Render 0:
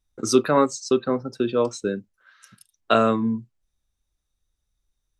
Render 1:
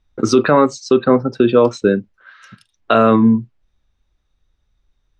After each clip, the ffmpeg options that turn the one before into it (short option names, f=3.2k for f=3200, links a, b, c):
-af "lowpass=3.3k,alimiter=level_in=13dB:limit=-1dB:release=50:level=0:latency=1,volume=-1dB"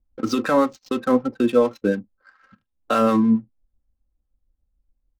-filter_complex "[0:a]adynamicsmooth=sensitivity=5.5:basefreq=640,acrossover=split=830[a][b];[a]aeval=exprs='val(0)*(1-0.5/2+0.5/2*cos(2*PI*6.9*n/s))':c=same[c];[b]aeval=exprs='val(0)*(1-0.5/2-0.5/2*cos(2*PI*6.9*n/s))':c=same[d];[c][d]amix=inputs=2:normalize=0,aecho=1:1:3.8:0.57,volume=-5.5dB"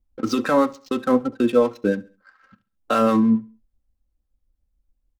-af "aecho=1:1:68|136|204:0.0794|0.031|0.0121"